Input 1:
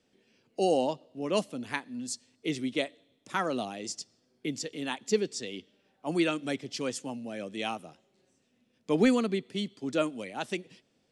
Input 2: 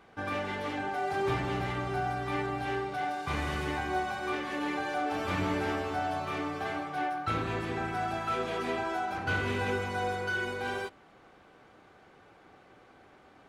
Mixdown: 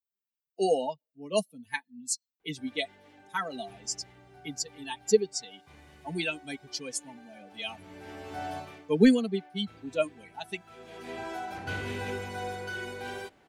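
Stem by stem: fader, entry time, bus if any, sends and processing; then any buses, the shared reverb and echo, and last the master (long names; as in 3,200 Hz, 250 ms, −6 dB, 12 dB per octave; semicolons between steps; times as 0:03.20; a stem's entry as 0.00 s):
+2.5 dB, 0.00 s, no send, spectral dynamics exaggerated over time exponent 2; high-shelf EQ 7,300 Hz +8.5 dB; comb filter 4.5 ms, depth 79%
−3.5 dB, 2.40 s, no send, high-shelf EQ 6,200 Hz +7 dB; automatic ducking −18 dB, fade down 0.30 s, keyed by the first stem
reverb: not used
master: parametric band 1,200 Hz −8 dB 0.4 octaves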